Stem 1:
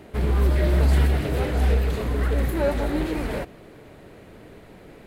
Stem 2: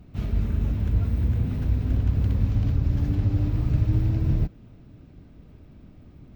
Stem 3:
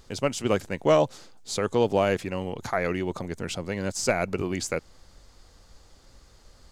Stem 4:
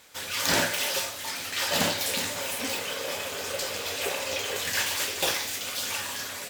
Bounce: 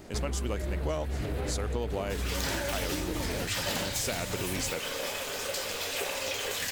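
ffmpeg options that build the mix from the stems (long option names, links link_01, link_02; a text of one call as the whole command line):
ffmpeg -i stem1.wav -i stem2.wav -i stem3.wav -i stem4.wav -filter_complex "[0:a]alimiter=limit=-18dB:level=0:latency=1,volume=-3.5dB[link_01];[1:a]adelay=250,volume=-15.5dB[link_02];[2:a]highshelf=frequency=5600:gain=10.5,volume=-4.5dB[link_03];[3:a]adelay=1950,volume=-1.5dB[link_04];[link_01][link_02][link_03][link_04]amix=inputs=4:normalize=0,acompressor=threshold=-28dB:ratio=6" out.wav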